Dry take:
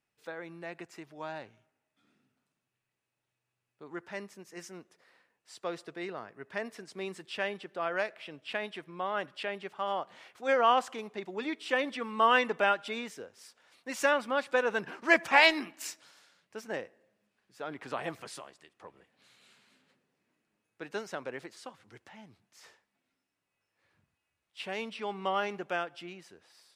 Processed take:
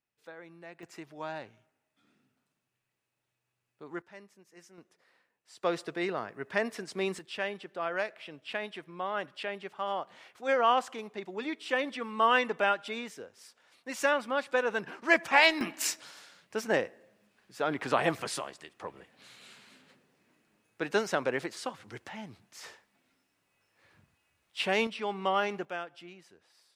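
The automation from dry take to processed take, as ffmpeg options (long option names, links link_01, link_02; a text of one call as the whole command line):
ffmpeg -i in.wav -af "asetnsamples=nb_out_samples=441:pad=0,asendcmd='0.83 volume volume 1.5dB;4.02 volume volume -10dB;4.78 volume volume -3.5dB;5.63 volume volume 6.5dB;7.19 volume volume -0.5dB;15.61 volume volume 9dB;24.87 volume volume 2.5dB;25.65 volume volume -4.5dB',volume=-6dB" out.wav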